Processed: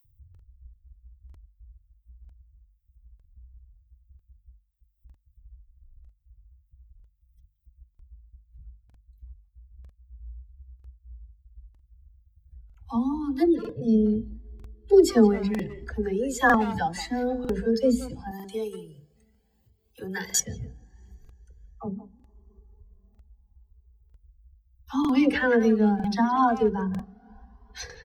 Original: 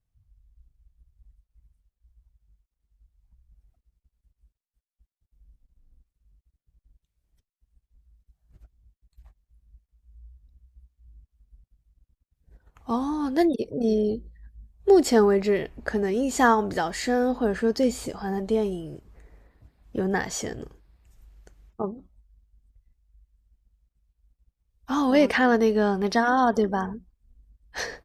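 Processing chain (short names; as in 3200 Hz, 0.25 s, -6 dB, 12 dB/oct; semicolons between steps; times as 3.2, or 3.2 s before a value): per-bin expansion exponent 1.5; low shelf 260 Hz +11.5 dB; notch comb 620 Hz; dispersion lows, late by 49 ms, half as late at 630 Hz; speakerphone echo 0.17 s, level -13 dB; reverb, pre-delay 3 ms, DRR 17 dB; upward compressor, threshold -38 dBFS; HPF 47 Hz 6 dB/oct; notches 50/100/150/200/250/300/350/400/450 Hz; 18.31–20.4 tilt +4.5 dB/oct; crackling interface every 0.95 s, samples 2048, repeat, from 0.3; cascading flanger rising 0.76 Hz; gain +5 dB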